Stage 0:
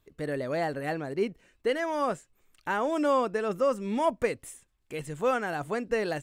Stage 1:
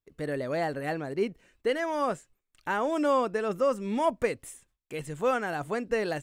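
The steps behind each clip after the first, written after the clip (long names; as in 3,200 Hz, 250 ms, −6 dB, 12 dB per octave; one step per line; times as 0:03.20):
noise gate with hold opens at −55 dBFS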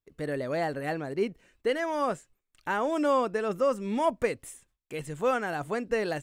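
no processing that can be heard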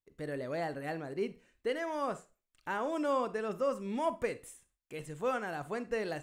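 convolution reverb RT60 0.30 s, pre-delay 27 ms, DRR 13.5 dB
level −6.5 dB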